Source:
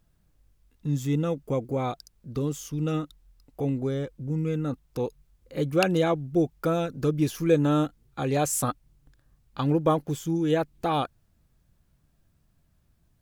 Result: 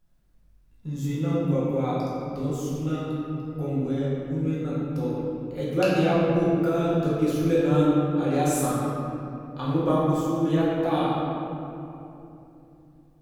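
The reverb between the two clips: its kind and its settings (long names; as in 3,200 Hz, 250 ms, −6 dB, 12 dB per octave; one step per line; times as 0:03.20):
rectangular room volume 120 cubic metres, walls hard, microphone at 1 metre
level −7.5 dB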